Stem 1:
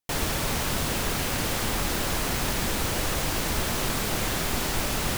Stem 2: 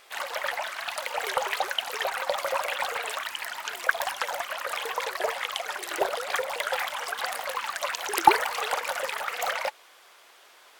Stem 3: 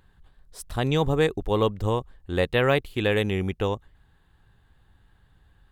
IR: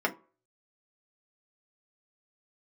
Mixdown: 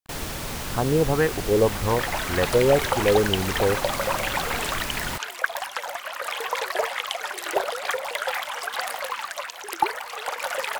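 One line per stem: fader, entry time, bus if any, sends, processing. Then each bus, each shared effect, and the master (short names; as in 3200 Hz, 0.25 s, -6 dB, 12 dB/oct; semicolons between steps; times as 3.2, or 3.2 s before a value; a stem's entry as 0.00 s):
-4.5 dB, 0.00 s, no send, dry
-6.5 dB, 1.55 s, no send, AGC gain up to 11.5 dB
-1.0 dB, 0.00 s, no send, LFO low-pass sine 1.8 Hz 410–1600 Hz; requantised 8-bit, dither none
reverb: off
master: dry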